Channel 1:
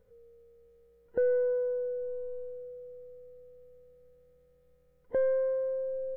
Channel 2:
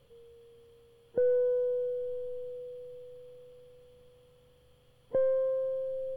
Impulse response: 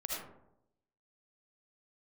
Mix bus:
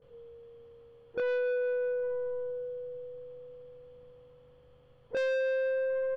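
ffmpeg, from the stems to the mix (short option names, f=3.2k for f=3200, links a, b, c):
-filter_complex "[0:a]acontrast=20,bandpass=f=460:t=q:w=0.83:csg=0,volume=-2dB[a];[1:a]lowpass=1.1k,crystalizer=i=9:c=0,adelay=20,volume=1.5dB[b];[a][b]amix=inputs=2:normalize=0,asoftclip=type=tanh:threshold=-28dB"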